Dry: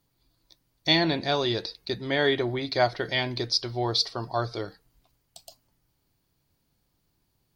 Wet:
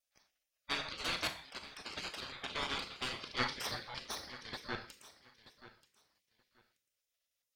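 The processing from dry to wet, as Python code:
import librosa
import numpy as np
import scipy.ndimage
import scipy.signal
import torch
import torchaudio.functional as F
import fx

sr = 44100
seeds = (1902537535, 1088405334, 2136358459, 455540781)

y = fx.block_reorder(x, sr, ms=116.0, group=6)
y = scipy.signal.sosfilt(scipy.signal.cheby2(4, 40, 410.0, 'highpass', fs=sr, output='sos'), y)
y = fx.tube_stage(y, sr, drive_db=23.0, bias=0.4)
y = fx.lowpass(y, sr, hz=1200.0, slope=6)
y = fx.echo_feedback(y, sr, ms=931, feedback_pct=22, wet_db=-16.5)
y = fx.rev_schroeder(y, sr, rt60_s=0.38, comb_ms=28, drr_db=7.5)
y = fx.spec_gate(y, sr, threshold_db=-15, keep='weak')
y = F.gain(torch.from_numpy(y), 9.5).numpy()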